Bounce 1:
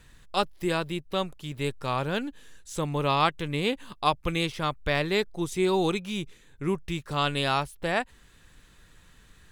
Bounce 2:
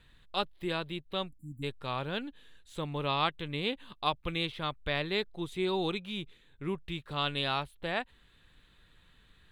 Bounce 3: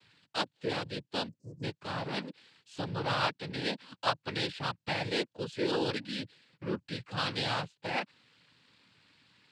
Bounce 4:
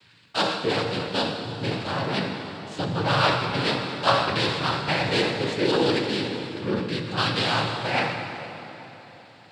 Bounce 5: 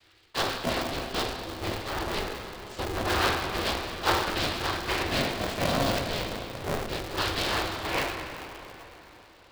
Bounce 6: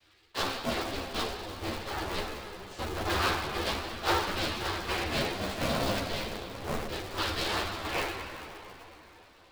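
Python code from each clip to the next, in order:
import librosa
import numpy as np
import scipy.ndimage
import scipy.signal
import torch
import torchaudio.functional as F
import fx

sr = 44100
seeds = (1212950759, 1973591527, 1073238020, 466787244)

y1 = fx.spec_erase(x, sr, start_s=1.28, length_s=0.35, low_hz=310.0, high_hz=7100.0)
y1 = fx.high_shelf_res(y1, sr, hz=4600.0, db=-6.5, q=3.0)
y1 = y1 * 10.0 ** (-7.0 / 20.0)
y2 = fx.noise_vocoder(y1, sr, seeds[0], bands=8)
y3 = fx.rev_plate(y2, sr, seeds[1], rt60_s=3.7, hf_ratio=0.7, predelay_ms=0, drr_db=2.0)
y3 = fx.sustainer(y3, sr, db_per_s=58.0)
y3 = y3 * 10.0 ** (7.5 / 20.0)
y4 = y3 * np.sign(np.sin(2.0 * np.pi * 210.0 * np.arange(len(y3)) / sr))
y4 = y4 * 10.0 ** (-4.5 / 20.0)
y5 = fx.ensemble(y4, sr)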